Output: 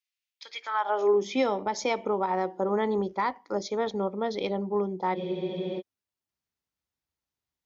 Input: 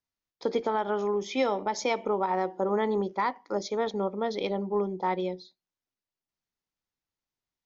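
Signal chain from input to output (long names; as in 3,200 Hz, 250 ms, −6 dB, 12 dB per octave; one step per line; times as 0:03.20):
high-pass filter sweep 2,500 Hz → 63 Hz, 0:00.55–0:01.63
frozen spectrum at 0:05.17, 0.62 s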